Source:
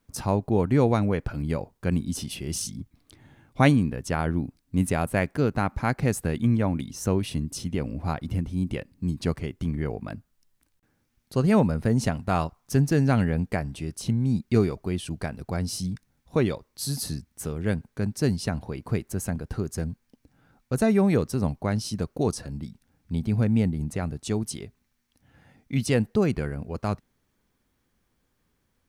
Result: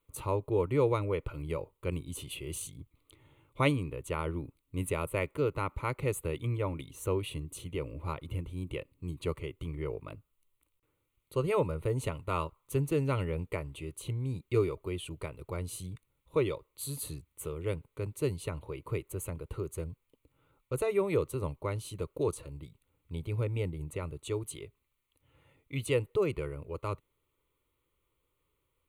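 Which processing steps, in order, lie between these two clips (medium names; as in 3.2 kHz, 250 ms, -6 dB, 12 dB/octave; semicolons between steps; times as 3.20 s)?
bass shelf 95 Hz -5 dB; static phaser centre 1.1 kHz, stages 8; trim -2.5 dB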